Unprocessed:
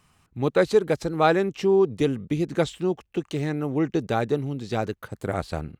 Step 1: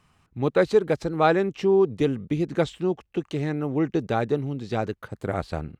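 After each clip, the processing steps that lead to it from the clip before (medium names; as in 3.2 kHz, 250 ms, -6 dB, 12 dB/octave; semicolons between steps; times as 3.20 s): treble shelf 6.2 kHz -9.5 dB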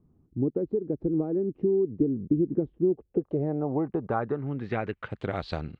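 compression 6:1, threshold -26 dBFS, peak gain reduction 12.5 dB; low-pass sweep 330 Hz -> 4.2 kHz, 2.78–5.53 s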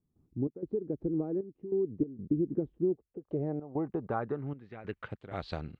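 trance gate ".xx.xxxxx." 96 bpm -12 dB; trim -5 dB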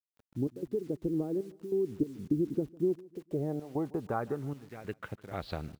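bit crusher 10-bit; feedback delay 151 ms, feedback 45%, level -22.5 dB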